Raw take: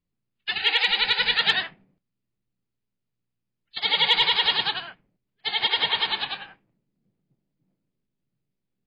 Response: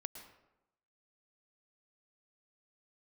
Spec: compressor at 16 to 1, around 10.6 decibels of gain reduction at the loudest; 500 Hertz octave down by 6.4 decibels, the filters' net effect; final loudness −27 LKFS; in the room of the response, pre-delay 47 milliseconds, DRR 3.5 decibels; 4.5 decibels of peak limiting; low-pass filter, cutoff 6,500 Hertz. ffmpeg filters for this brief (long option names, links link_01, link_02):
-filter_complex "[0:a]lowpass=6500,equalizer=frequency=500:width_type=o:gain=-7.5,acompressor=threshold=-27dB:ratio=16,alimiter=limit=-22dB:level=0:latency=1,asplit=2[link_01][link_02];[1:a]atrim=start_sample=2205,adelay=47[link_03];[link_02][link_03]afir=irnorm=-1:irlink=0,volume=-0.5dB[link_04];[link_01][link_04]amix=inputs=2:normalize=0,volume=4dB"